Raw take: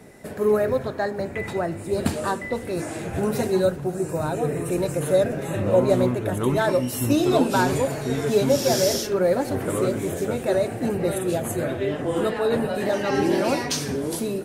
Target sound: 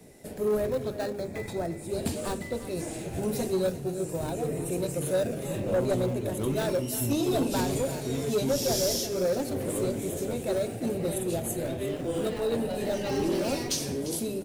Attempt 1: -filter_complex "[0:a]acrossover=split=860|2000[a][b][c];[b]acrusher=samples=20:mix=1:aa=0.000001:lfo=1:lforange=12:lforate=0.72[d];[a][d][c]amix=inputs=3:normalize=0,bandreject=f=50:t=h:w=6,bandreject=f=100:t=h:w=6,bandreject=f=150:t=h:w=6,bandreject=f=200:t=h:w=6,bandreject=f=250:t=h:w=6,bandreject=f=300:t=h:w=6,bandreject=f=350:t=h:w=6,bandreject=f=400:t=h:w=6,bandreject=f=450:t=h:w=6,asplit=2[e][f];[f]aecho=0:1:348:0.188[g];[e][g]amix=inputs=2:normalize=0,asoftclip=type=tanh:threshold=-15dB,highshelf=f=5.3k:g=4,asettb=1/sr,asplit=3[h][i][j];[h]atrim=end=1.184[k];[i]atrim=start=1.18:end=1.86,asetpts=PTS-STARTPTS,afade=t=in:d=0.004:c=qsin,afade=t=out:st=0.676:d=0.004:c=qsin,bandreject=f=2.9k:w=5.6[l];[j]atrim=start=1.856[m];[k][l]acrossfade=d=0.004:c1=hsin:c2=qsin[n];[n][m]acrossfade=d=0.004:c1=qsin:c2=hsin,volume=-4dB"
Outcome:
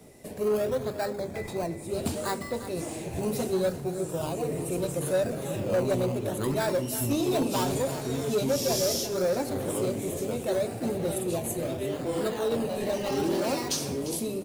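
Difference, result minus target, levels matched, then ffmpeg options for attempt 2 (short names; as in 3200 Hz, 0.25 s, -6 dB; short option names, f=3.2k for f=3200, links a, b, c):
decimation with a swept rate: distortion -29 dB
-filter_complex "[0:a]acrossover=split=860|2000[a][b][c];[b]acrusher=samples=59:mix=1:aa=0.000001:lfo=1:lforange=35.4:lforate=0.72[d];[a][d][c]amix=inputs=3:normalize=0,bandreject=f=50:t=h:w=6,bandreject=f=100:t=h:w=6,bandreject=f=150:t=h:w=6,bandreject=f=200:t=h:w=6,bandreject=f=250:t=h:w=6,bandreject=f=300:t=h:w=6,bandreject=f=350:t=h:w=6,bandreject=f=400:t=h:w=6,bandreject=f=450:t=h:w=6,asplit=2[e][f];[f]aecho=0:1:348:0.188[g];[e][g]amix=inputs=2:normalize=0,asoftclip=type=tanh:threshold=-15dB,highshelf=f=5.3k:g=4,asettb=1/sr,asplit=3[h][i][j];[h]atrim=end=1.184[k];[i]atrim=start=1.18:end=1.86,asetpts=PTS-STARTPTS,afade=t=in:d=0.004:c=qsin,afade=t=out:st=0.676:d=0.004:c=qsin,bandreject=f=2.9k:w=5.6[l];[j]atrim=start=1.856[m];[k][l]acrossfade=d=0.004:c1=hsin:c2=qsin[n];[n][m]acrossfade=d=0.004:c1=qsin:c2=hsin,volume=-4dB"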